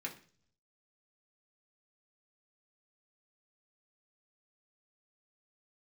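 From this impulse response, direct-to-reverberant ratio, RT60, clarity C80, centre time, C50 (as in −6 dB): −2.0 dB, 0.45 s, 17.0 dB, 13 ms, 12.5 dB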